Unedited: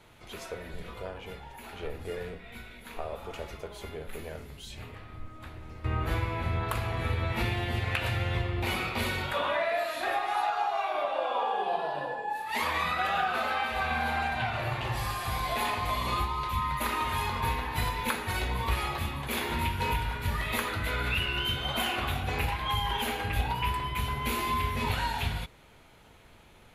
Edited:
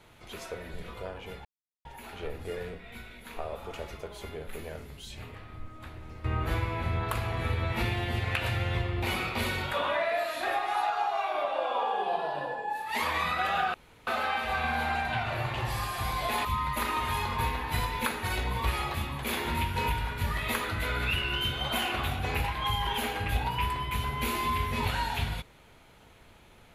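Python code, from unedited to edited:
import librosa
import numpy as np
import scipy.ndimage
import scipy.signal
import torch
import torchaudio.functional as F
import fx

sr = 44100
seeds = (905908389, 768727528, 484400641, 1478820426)

y = fx.edit(x, sr, fx.insert_silence(at_s=1.45, length_s=0.4),
    fx.insert_room_tone(at_s=13.34, length_s=0.33),
    fx.cut(start_s=15.72, length_s=0.77), tone=tone)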